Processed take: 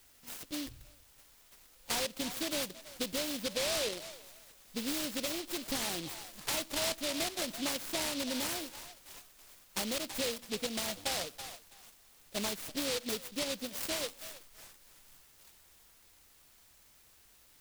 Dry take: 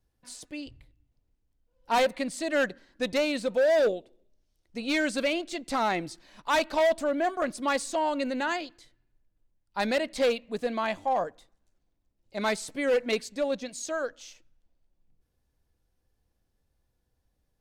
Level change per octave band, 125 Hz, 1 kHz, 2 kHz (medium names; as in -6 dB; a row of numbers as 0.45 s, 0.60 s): -2.5 dB, -14.0 dB, -9.5 dB